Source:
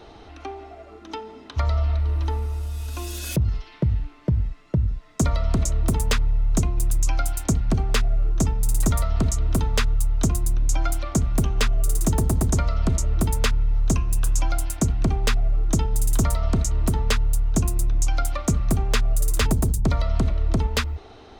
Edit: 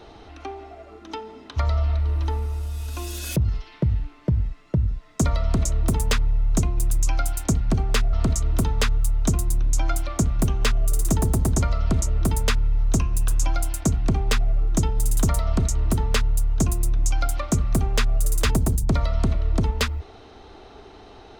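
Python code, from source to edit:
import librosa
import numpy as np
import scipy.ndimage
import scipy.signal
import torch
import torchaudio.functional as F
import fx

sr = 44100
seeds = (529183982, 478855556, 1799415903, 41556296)

y = fx.edit(x, sr, fx.cut(start_s=8.13, length_s=0.96), tone=tone)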